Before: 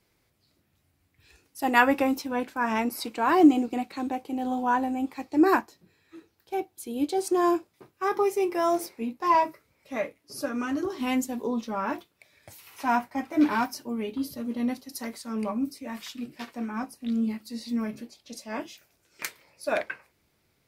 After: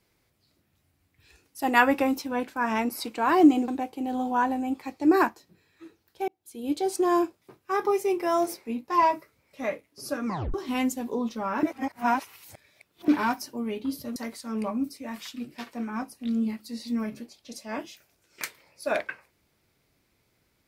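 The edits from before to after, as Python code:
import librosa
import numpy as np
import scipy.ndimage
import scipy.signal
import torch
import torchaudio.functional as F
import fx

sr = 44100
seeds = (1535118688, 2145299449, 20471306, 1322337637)

y = fx.edit(x, sr, fx.cut(start_s=3.68, length_s=0.32),
    fx.fade_in_span(start_s=6.6, length_s=0.47),
    fx.tape_stop(start_s=10.58, length_s=0.28),
    fx.reverse_span(start_s=11.95, length_s=1.45),
    fx.cut(start_s=14.48, length_s=0.49), tone=tone)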